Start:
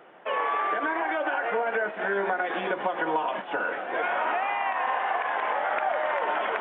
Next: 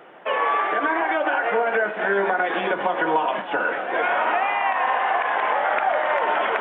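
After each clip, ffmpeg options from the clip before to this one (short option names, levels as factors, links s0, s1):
-af "bandreject=f=61.88:t=h:w=4,bandreject=f=123.76:t=h:w=4,bandreject=f=185.64:t=h:w=4,bandreject=f=247.52:t=h:w=4,bandreject=f=309.4:t=h:w=4,bandreject=f=371.28:t=h:w=4,bandreject=f=433.16:t=h:w=4,bandreject=f=495.04:t=h:w=4,bandreject=f=556.92:t=h:w=4,bandreject=f=618.8:t=h:w=4,bandreject=f=680.68:t=h:w=4,bandreject=f=742.56:t=h:w=4,bandreject=f=804.44:t=h:w=4,bandreject=f=866.32:t=h:w=4,bandreject=f=928.2:t=h:w=4,bandreject=f=990.08:t=h:w=4,bandreject=f=1051.96:t=h:w=4,bandreject=f=1113.84:t=h:w=4,bandreject=f=1175.72:t=h:w=4,bandreject=f=1237.6:t=h:w=4,bandreject=f=1299.48:t=h:w=4,bandreject=f=1361.36:t=h:w=4,bandreject=f=1423.24:t=h:w=4,bandreject=f=1485.12:t=h:w=4,bandreject=f=1547:t=h:w=4,bandreject=f=1608.88:t=h:w=4,bandreject=f=1670.76:t=h:w=4,volume=2"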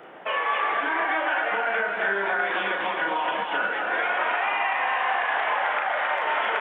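-filter_complex "[0:a]acrossover=split=850|1700[s0][s1][s2];[s0]acompressor=threshold=0.0141:ratio=4[s3];[s1]acompressor=threshold=0.0282:ratio=4[s4];[s2]acompressor=threshold=0.0316:ratio=4[s5];[s3][s4][s5]amix=inputs=3:normalize=0,asplit=2[s6][s7];[s7]aecho=0:1:34.99|265.3:0.708|0.708[s8];[s6][s8]amix=inputs=2:normalize=0"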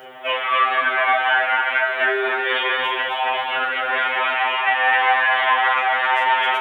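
-af "crystalizer=i=4.5:c=0,afftfilt=real='re*2.45*eq(mod(b,6),0)':imag='im*2.45*eq(mod(b,6),0)':win_size=2048:overlap=0.75,volume=1.78"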